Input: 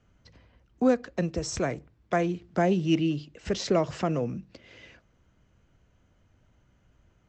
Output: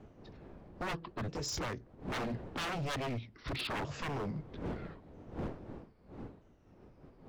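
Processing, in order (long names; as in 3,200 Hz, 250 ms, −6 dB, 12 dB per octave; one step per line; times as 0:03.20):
pitch shifter swept by a sawtooth −8.5 semitones, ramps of 1,283 ms
wind on the microphone 360 Hz −44 dBFS
wave folding −29 dBFS
level −2.5 dB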